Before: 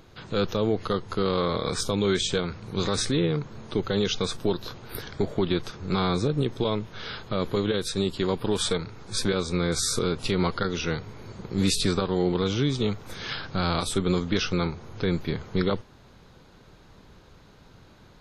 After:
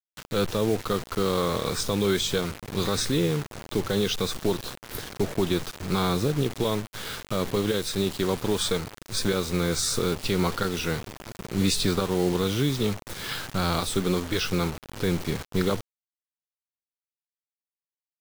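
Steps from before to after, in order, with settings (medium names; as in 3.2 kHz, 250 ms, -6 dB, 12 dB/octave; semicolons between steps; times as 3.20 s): 13.98–14.43 s: peaking EQ 75 Hz -> 270 Hz -13 dB 0.43 oct; bit crusher 6-bit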